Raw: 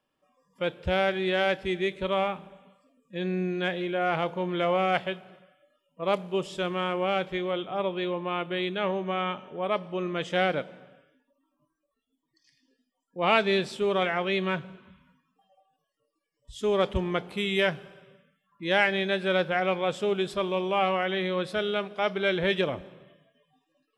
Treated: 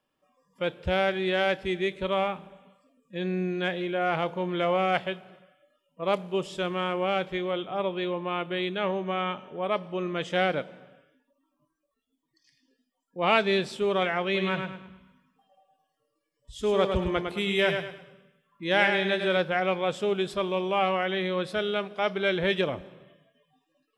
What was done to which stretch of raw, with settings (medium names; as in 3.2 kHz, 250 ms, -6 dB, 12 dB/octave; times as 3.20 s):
14.24–19.37 s: feedback delay 105 ms, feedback 34%, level -6 dB